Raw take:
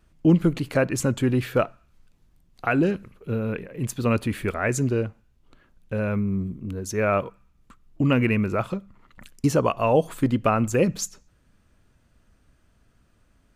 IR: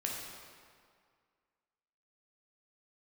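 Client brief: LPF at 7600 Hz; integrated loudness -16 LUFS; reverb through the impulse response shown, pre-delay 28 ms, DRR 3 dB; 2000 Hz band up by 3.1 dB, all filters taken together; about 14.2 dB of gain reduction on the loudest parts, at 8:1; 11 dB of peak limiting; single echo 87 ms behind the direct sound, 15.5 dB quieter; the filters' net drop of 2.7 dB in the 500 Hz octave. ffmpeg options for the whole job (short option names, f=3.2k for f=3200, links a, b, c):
-filter_complex "[0:a]lowpass=7.6k,equalizer=f=500:t=o:g=-3.5,equalizer=f=2k:t=o:g=4.5,acompressor=threshold=-28dB:ratio=8,alimiter=limit=-23.5dB:level=0:latency=1,aecho=1:1:87:0.168,asplit=2[a][b];[1:a]atrim=start_sample=2205,adelay=28[c];[b][c]afir=irnorm=-1:irlink=0,volume=-6dB[d];[a][d]amix=inputs=2:normalize=0,volume=17dB"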